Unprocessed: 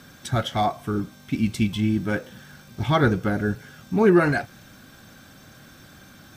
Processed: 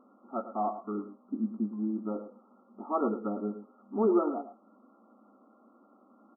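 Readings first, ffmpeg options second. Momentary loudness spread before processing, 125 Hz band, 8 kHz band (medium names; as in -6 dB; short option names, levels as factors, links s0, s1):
13 LU, under -20 dB, no reading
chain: -af "afftfilt=real='re*between(b*sr/4096,200,1400)':imag='im*between(b*sr/4096,200,1400)':win_size=4096:overlap=0.75,aecho=1:1:109:0.266,volume=0.398"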